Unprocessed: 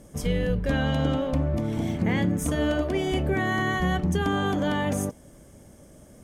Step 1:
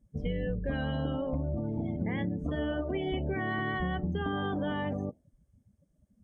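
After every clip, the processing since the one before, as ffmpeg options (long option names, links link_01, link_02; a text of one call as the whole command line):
ffmpeg -i in.wav -filter_complex "[0:a]acrossover=split=5600[link_01][link_02];[link_02]acompressor=threshold=-56dB:ratio=4:attack=1:release=60[link_03];[link_01][link_03]amix=inputs=2:normalize=0,afftdn=noise_reduction=29:noise_floor=-34,acompressor=threshold=-27dB:ratio=4,volume=-2dB" out.wav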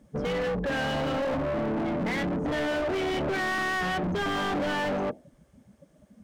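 ffmpeg -i in.wav -filter_complex "[0:a]equalizer=frequency=100:width_type=o:width=0.29:gain=-12.5,asplit=2[link_01][link_02];[link_02]highpass=frequency=720:poles=1,volume=30dB,asoftclip=type=tanh:threshold=-20.5dB[link_03];[link_01][link_03]amix=inputs=2:normalize=0,lowpass=frequency=2300:poles=1,volume=-6dB,asoftclip=type=hard:threshold=-26dB" out.wav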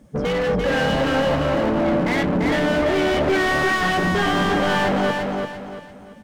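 ffmpeg -i in.wav -af "aecho=1:1:342|684|1026|1368|1710:0.668|0.234|0.0819|0.0287|0.01,volume=7dB" out.wav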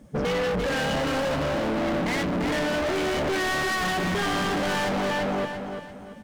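ffmpeg -i in.wav -af "asoftclip=type=hard:threshold=-24dB" out.wav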